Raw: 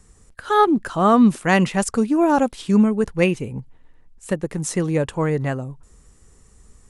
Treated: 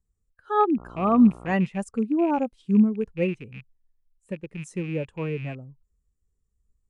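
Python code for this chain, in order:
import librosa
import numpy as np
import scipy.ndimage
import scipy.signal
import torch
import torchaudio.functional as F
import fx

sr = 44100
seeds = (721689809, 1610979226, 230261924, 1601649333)

y = fx.rattle_buzz(x, sr, strikes_db=-29.0, level_db=-15.0)
y = fx.dmg_buzz(y, sr, base_hz=60.0, harmonics=23, level_db=-29.0, tilt_db=-2, odd_only=False, at=(0.77, 1.53), fade=0.02)
y = fx.spectral_expand(y, sr, expansion=1.5)
y = y * librosa.db_to_amplitude(-5.5)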